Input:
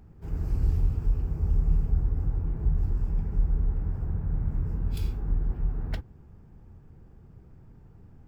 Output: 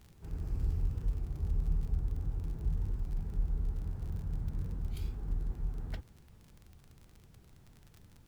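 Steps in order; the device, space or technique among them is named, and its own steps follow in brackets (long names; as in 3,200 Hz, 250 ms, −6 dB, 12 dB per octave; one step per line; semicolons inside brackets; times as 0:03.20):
warped LP (wow of a warped record 33 1/3 rpm, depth 160 cents; surface crackle 42 per second −36 dBFS; pink noise bed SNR 36 dB)
level −8 dB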